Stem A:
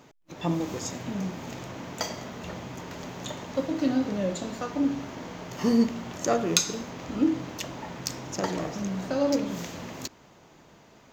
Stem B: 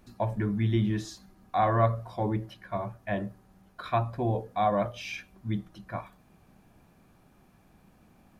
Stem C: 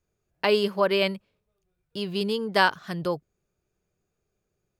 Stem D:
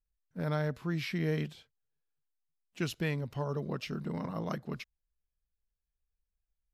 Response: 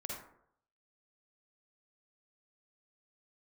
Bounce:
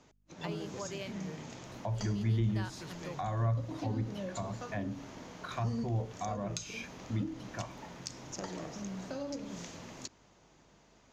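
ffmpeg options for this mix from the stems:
-filter_complex "[0:a]lowpass=frequency=6800:width_type=q:width=1.6,aeval=exprs='val(0)+0.000794*(sin(2*PI*50*n/s)+sin(2*PI*2*50*n/s)/2+sin(2*PI*3*50*n/s)/3+sin(2*PI*4*50*n/s)/4+sin(2*PI*5*50*n/s)/5)':channel_layout=same,volume=-9.5dB[link_01];[1:a]adelay=1650,volume=-1.5dB[link_02];[2:a]volume=-16.5dB[link_03];[3:a]volume=-14dB[link_04];[link_01][link_02][link_03][link_04]amix=inputs=4:normalize=0,acrossover=split=160[link_05][link_06];[link_06]acompressor=threshold=-37dB:ratio=5[link_07];[link_05][link_07]amix=inputs=2:normalize=0"

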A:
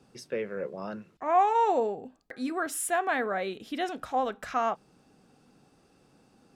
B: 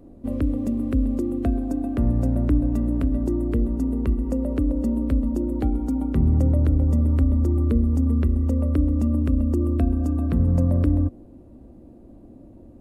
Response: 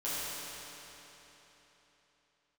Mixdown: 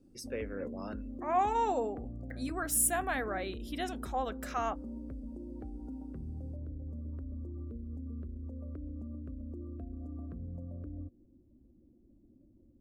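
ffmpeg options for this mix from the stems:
-filter_complex "[0:a]aemphasis=mode=production:type=50fm,volume=-6dB[link_01];[1:a]alimiter=limit=-19dB:level=0:latency=1:release=165,volume=-16dB[link_02];[link_01][link_02]amix=inputs=2:normalize=0,afftdn=noise_reduction=15:noise_floor=-58"

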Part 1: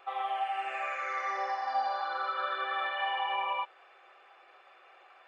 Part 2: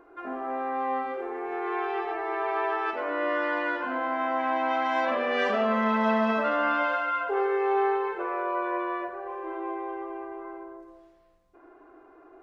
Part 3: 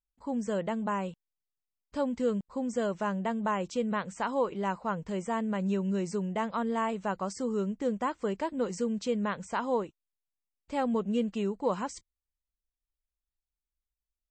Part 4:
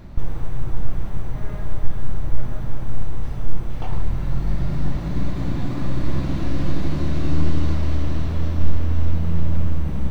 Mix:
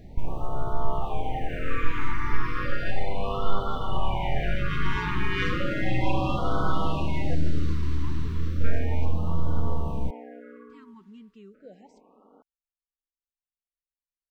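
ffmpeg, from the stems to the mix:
ffmpeg -i stem1.wav -i stem2.wav -i stem3.wav -i stem4.wav -filter_complex "[0:a]alimiter=level_in=3dB:limit=-24dB:level=0:latency=1:release=258,volume=-3dB,adelay=950,volume=0dB[link_01];[1:a]highpass=74,aeval=exprs='val(0)*sin(2*PI*97*n/s)':channel_layout=same,adynamicequalizer=threshold=0.00631:dfrequency=1700:dqfactor=0.7:tfrequency=1700:tqfactor=0.7:attack=5:release=100:ratio=0.375:range=3.5:mode=boostabove:tftype=highshelf,volume=-1.5dB,asplit=3[link_02][link_03][link_04];[link_02]atrim=end=7.35,asetpts=PTS-STARTPTS,afade=type=out:start_time=7.346:duration=0.004:curve=hsin[link_05];[link_03]atrim=start=7.35:end=8.64,asetpts=PTS-STARTPTS,volume=0[link_06];[link_04]atrim=start=8.64,asetpts=PTS-STARTPTS,afade=type=in:duration=0.004:curve=hsin[link_07];[link_05][link_06][link_07]concat=n=3:v=0:a=1[link_08];[2:a]lowpass=4700,volume=-17.5dB[link_09];[3:a]volume=-6dB[link_10];[link_01][link_08][link_09][link_10]amix=inputs=4:normalize=0,afftfilt=real='re*(1-between(b*sr/1024,600*pow(2100/600,0.5+0.5*sin(2*PI*0.34*pts/sr))/1.41,600*pow(2100/600,0.5+0.5*sin(2*PI*0.34*pts/sr))*1.41))':imag='im*(1-between(b*sr/1024,600*pow(2100/600,0.5+0.5*sin(2*PI*0.34*pts/sr))/1.41,600*pow(2100/600,0.5+0.5*sin(2*PI*0.34*pts/sr))*1.41))':win_size=1024:overlap=0.75" out.wav

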